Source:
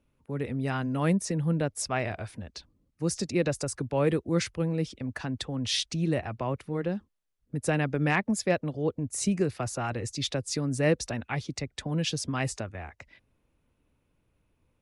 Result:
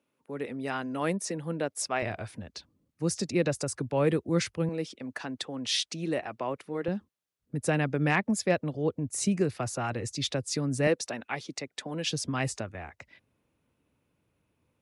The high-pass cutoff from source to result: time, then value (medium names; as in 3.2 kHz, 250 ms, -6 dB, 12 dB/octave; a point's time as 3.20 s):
280 Hz
from 2.02 s 95 Hz
from 4.69 s 270 Hz
from 6.88 s 89 Hz
from 10.87 s 280 Hz
from 12.05 s 95 Hz